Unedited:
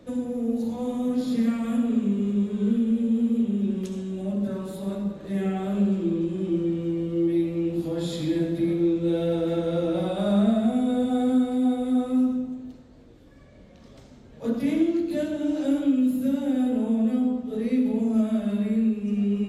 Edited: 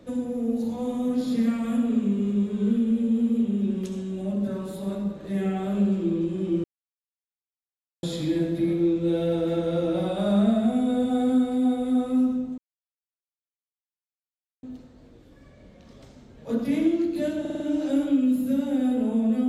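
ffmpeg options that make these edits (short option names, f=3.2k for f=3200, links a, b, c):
-filter_complex "[0:a]asplit=8[a][b][c][d][e][f][g][h];[a]atrim=end=6.64,asetpts=PTS-STARTPTS,afade=t=out:st=6.636:d=0.004:c=hsin[i];[b]atrim=start=6.64:end=8.03,asetpts=PTS-STARTPTS,volume=0[j];[c]atrim=start=8.03:end=12.58,asetpts=PTS-STARTPTS,afade=t=in:d=0.004:c=hsin,afade=t=out:st=4.546:d=0.004:c=hsin,apad=pad_dur=2.05[k];[d]atrim=start=12.58:end=15.402,asetpts=PTS-STARTPTS,afade=t=in:d=0.004:c=hsin[l];[e]atrim=start=15.348:end=15.402[m];[f]atrim=start=15.348:end=15.402[n];[g]atrim=start=15.348:end=15.402[o];[h]atrim=start=15.348[p];[i][j][k][l]concat=n=4:v=0:a=1[q];[q][m]acrossfade=d=0.004:c1=hsin:c2=hsin[r];[r][n]acrossfade=d=0.004:c1=hsin:c2=hsin[s];[s][o]acrossfade=d=0.004:c1=hsin:c2=hsin[t];[t][p]acrossfade=d=0.004:c1=hsin:c2=hsin"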